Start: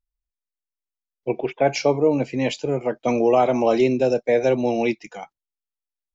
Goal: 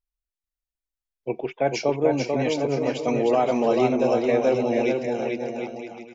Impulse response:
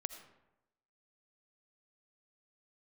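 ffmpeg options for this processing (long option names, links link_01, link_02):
-af "aecho=1:1:440|748|963.6|1115|1220:0.631|0.398|0.251|0.158|0.1,volume=-4dB"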